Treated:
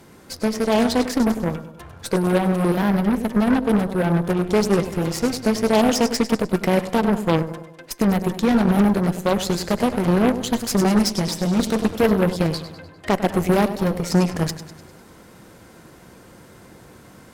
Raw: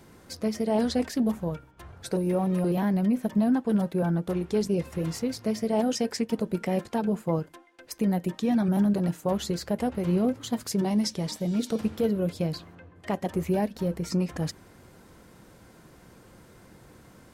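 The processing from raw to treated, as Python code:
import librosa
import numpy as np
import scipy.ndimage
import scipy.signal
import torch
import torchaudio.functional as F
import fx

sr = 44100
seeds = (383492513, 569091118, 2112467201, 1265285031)

y = fx.low_shelf(x, sr, hz=93.0, db=-6.0)
y = fx.echo_feedback(y, sr, ms=100, feedback_pct=51, wet_db=-11)
y = fx.cheby_harmonics(y, sr, harmonics=(6, 8), levels_db=(-14, -12), full_scale_db=-14.5)
y = fx.rider(y, sr, range_db=10, speed_s=2.0)
y = y * 10.0 ** (7.0 / 20.0)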